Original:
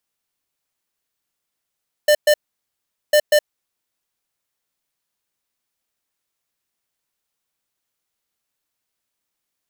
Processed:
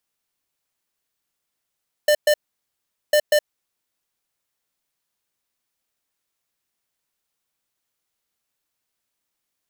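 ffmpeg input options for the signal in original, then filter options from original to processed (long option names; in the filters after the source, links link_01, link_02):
-f lavfi -i "aevalsrc='0.237*(2*lt(mod(598*t,1),0.5)-1)*clip(min(mod(mod(t,1.05),0.19),0.07-mod(mod(t,1.05),0.19))/0.005,0,1)*lt(mod(t,1.05),0.38)':duration=2.1:sample_rate=44100"
-af "acompressor=threshold=-16dB:ratio=6"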